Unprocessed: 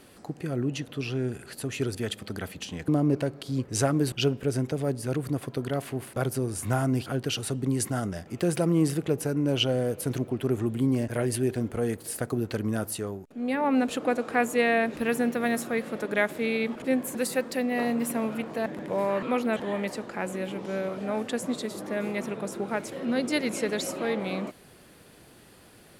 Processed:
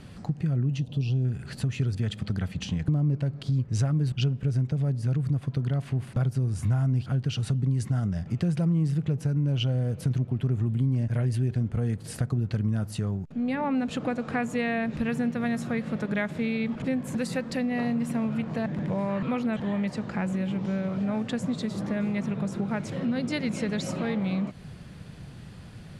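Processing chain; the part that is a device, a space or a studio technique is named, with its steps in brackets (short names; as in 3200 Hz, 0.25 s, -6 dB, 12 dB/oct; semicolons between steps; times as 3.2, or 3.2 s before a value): 0.79–1.25 band shelf 1600 Hz -15.5 dB 1.2 oct; jukebox (LPF 6400 Hz 12 dB/oct; resonant low shelf 230 Hz +12 dB, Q 1.5; compressor 3:1, threshold -29 dBFS, peak gain reduction 13.5 dB); gain +2.5 dB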